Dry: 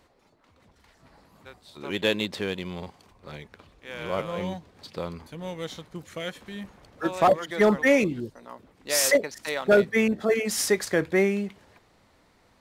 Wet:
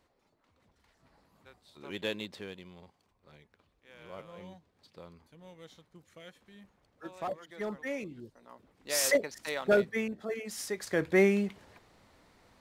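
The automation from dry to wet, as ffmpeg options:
-af "volume=4.73,afade=t=out:st=2.02:d=0.72:silence=0.446684,afade=t=in:st=8.06:d=1.04:silence=0.266073,afade=t=out:st=9.68:d=0.43:silence=0.421697,afade=t=in:st=10.75:d=0.5:silence=0.251189"

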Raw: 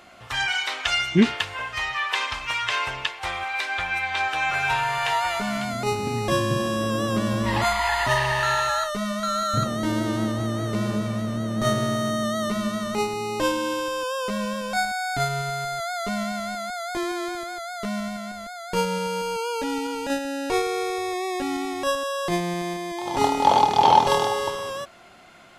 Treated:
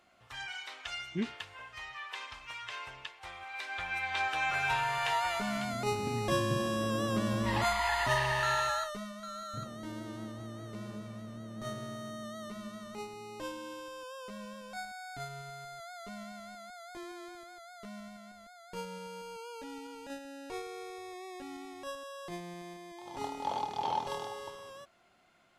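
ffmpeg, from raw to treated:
-af "volume=0.422,afade=t=in:st=3.4:d=0.78:silence=0.334965,afade=t=out:st=8.66:d=0.46:silence=0.316228"

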